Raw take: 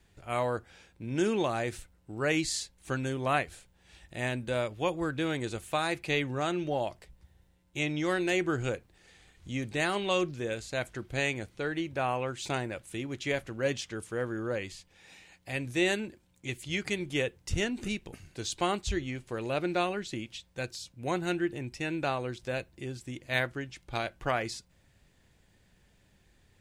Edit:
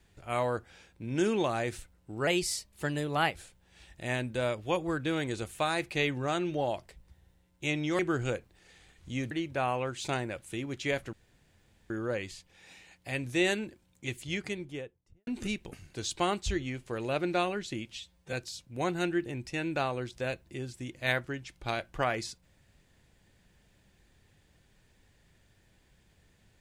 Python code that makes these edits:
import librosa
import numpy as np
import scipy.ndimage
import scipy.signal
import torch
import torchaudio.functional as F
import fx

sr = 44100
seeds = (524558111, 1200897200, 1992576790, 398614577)

y = fx.studio_fade_out(x, sr, start_s=16.52, length_s=1.16)
y = fx.edit(y, sr, fx.speed_span(start_s=2.27, length_s=1.21, speed=1.12),
    fx.cut(start_s=8.12, length_s=0.26),
    fx.cut(start_s=9.7, length_s=2.02),
    fx.room_tone_fill(start_s=13.54, length_s=0.77),
    fx.stretch_span(start_s=20.32, length_s=0.28, factor=1.5), tone=tone)